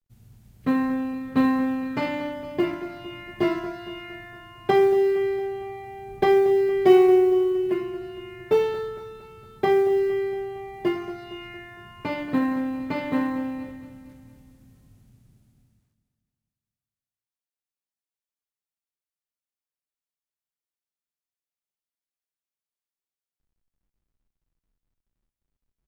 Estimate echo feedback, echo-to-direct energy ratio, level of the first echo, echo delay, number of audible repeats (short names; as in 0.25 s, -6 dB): 55%, -12.5 dB, -14.0 dB, 0.23 s, 5